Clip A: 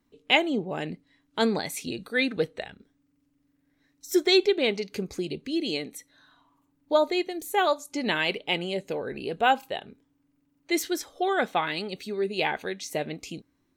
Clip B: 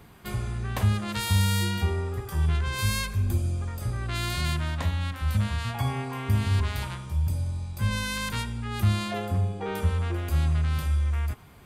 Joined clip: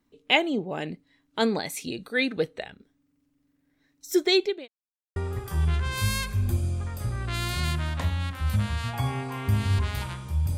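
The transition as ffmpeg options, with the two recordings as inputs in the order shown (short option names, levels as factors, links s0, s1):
-filter_complex "[0:a]apad=whole_dur=10.57,atrim=end=10.57,asplit=2[s0][s1];[s0]atrim=end=4.68,asetpts=PTS-STARTPTS,afade=t=out:st=4.18:d=0.5:c=qsin[s2];[s1]atrim=start=4.68:end=5.16,asetpts=PTS-STARTPTS,volume=0[s3];[1:a]atrim=start=1.97:end=7.38,asetpts=PTS-STARTPTS,afade=t=in:d=0.004:c=hsin[s4];[s2][s3][s4]concat=n=3:v=0:a=1"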